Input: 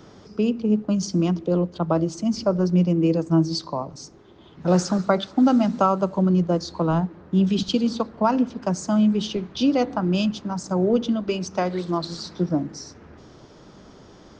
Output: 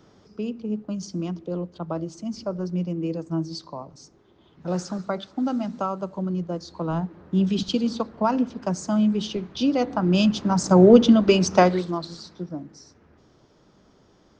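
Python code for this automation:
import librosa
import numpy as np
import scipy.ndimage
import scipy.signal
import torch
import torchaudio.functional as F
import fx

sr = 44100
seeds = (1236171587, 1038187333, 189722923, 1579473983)

y = fx.gain(x, sr, db=fx.line((6.63, -8.0), (7.22, -2.0), (9.78, -2.0), (10.65, 8.0), (11.63, 8.0), (11.92, -3.0), (12.49, -10.5)))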